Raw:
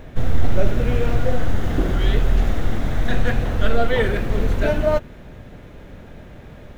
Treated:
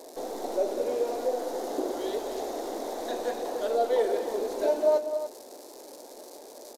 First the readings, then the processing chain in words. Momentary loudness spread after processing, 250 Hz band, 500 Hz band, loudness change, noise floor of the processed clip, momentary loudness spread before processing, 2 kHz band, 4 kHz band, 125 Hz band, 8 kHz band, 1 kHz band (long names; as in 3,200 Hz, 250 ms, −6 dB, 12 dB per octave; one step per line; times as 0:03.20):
20 LU, −11.0 dB, −2.0 dB, −7.0 dB, −47 dBFS, 21 LU, −17.0 dB, −8.5 dB, below −40 dB, can't be measured, −3.5 dB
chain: surface crackle 350 per second −33 dBFS
inverse Chebyshev high-pass filter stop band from 170 Hz, stop band 40 dB
in parallel at −3 dB: downward compressor, threshold −32 dBFS, peak gain reduction 16 dB
on the sum: flat-topped bell 2,000 Hz −15.5 dB
on a send: loudspeakers that aren't time-aligned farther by 67 metres −12 dB, 99 metres −11 dB
on the sum: downsampling to 32,000 Hz
level −4 dB